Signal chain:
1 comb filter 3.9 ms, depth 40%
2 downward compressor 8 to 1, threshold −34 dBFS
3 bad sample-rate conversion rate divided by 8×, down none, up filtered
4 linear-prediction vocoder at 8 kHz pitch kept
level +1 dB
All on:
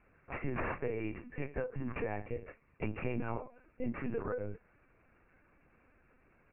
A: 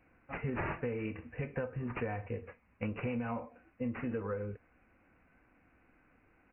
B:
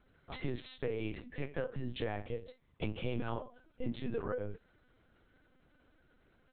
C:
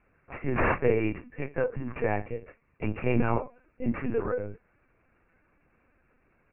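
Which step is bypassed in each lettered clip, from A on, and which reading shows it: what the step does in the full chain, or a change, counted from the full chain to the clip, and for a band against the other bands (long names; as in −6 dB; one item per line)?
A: 4, 125 Hz band +2.0 dB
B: 3, 2 kHz band −2.5 dB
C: 2, average gain reduction 6.5 dB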